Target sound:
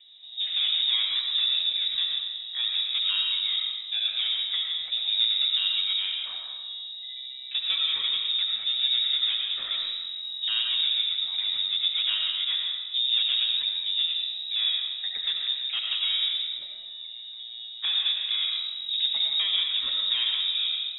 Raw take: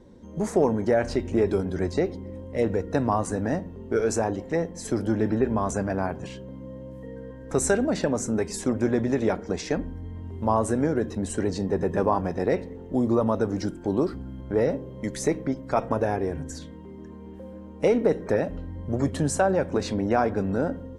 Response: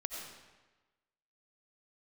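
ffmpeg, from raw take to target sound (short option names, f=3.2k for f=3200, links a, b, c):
-filter_complex "[0:a]acrossover=split=230[a][b];[b]asoftclip=type=tanh:threshold=-23dB[c];[a][c]amix=inputs=2:normalize=0,lowpass=f=3.3k:t=q:w=0.5098,lowpass=f=3.3k:t=q:w=0.6013,lowpass=f=3.3k:t=q:w=0.9,lowpass=f=3.3k:t=q:w=2.563,afreqshift=-3900[d];[1:a]atrim=start_sample=2205[e];[d][e]afir=irnorm=-1:irlink=0"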